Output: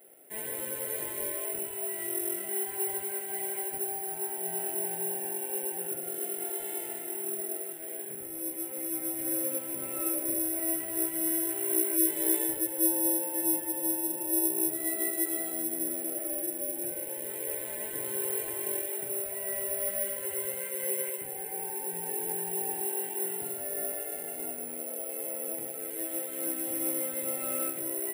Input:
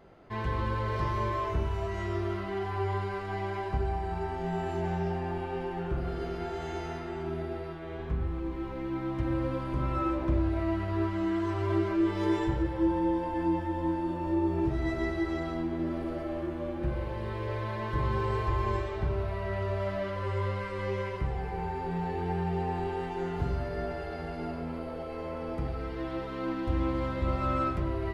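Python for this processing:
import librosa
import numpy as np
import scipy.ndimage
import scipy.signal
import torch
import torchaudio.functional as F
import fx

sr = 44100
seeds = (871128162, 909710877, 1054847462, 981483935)

y = scipy.signal.sosfilt(scipy.signal.cheby1(2, 1.0, 450.0, 'highpass', fs=sr, output='sos'), x)
y = fx.fixed_phaser(y, sr, hz=2700.0, stages=4)
y = (np.kron(scipy.signal.resample_poly(y, 1, 4), np.eye(4)[0]) * 4)[:len(y)]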